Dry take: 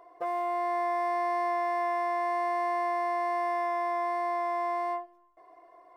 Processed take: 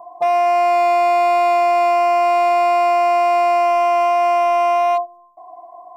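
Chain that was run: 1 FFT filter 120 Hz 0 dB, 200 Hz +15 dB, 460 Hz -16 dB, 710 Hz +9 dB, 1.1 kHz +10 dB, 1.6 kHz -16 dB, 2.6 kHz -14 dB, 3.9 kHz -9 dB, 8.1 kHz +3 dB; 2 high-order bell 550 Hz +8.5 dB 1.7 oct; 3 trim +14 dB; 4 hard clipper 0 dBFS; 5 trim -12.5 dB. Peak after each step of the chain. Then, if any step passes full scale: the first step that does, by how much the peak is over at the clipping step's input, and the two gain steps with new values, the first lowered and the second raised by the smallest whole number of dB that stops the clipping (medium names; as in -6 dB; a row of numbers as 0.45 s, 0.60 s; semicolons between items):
-14.0 dBFS, -8.0 dBFS, +6.0 dBFS, 0.0 dBFS, -12.5 dBFS; step 3, 6.0 dB; step 3 +8 dB, step 5 -6.5 dB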